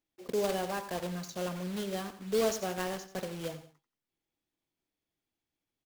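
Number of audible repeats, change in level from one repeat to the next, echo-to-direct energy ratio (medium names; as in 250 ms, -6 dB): 2, -8.0 dB, -12.5 dB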